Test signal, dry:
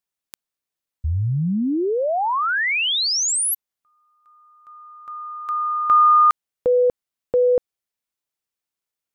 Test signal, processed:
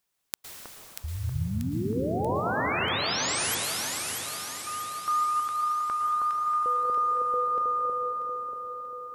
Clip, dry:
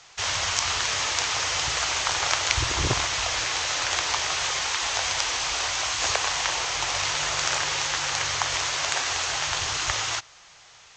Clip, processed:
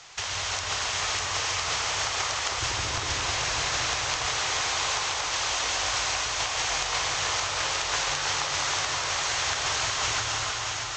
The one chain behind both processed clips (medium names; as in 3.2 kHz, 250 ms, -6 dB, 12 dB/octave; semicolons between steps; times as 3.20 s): inverted gate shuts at -10 dBFS, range -24 dB; compressor with a negative ratio -31 dBFS, ratio -1; on a send: echo whose repeats swap between lows and highs 318 ms, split 1.4 kHz, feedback 69%, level -2 dB; on the sum: plate-style reverb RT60 4.2 s, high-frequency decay 0.85×, pre-delay 100 ms, DRR -1 dB; trim -1 dB